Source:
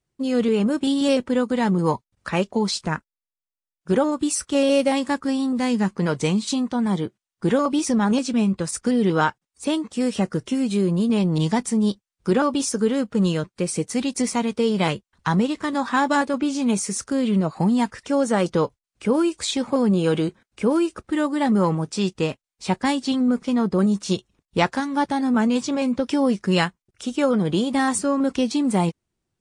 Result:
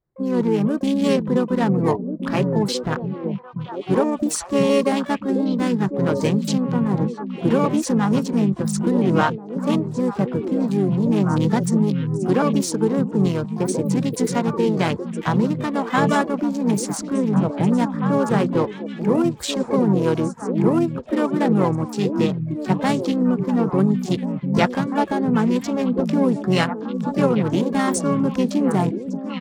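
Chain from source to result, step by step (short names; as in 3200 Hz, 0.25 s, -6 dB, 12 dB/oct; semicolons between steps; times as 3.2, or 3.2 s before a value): Wiener smoothing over 15 samples; harmoniser -5 st -6 dB, +12 st -15 dB; delay with a stepping band-pass 0.693 s, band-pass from 150 Hz, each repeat 1.4 oct, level -2 dB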